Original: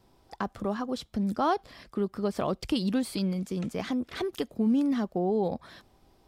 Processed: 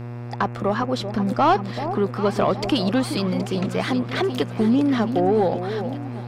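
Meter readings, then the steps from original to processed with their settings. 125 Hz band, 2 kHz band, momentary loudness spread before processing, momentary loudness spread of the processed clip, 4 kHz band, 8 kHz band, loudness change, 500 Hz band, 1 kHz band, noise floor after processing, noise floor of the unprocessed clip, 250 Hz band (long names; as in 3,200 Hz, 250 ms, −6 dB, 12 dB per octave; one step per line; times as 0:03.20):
+10.5 dB, +11.5 dB, 7 LU, 7 LU, +9.5 dB, +5.5 dB, +8.0 dB, +9.5 dB, +10.5 dB, −32 dBFS, −64 dBFS, +6.5 dB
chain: mid-hump overdrive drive 11 dB, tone 2,800 Hz, clips at −15.5 dBFS
delay that swaps between a low-pass and a high-pass 386 ms, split 890 Hz, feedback 69%, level −9 dB
hum with harmonics 120 Hz, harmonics 23, −40 dBFS −8 dB per octave
level +7.5 dB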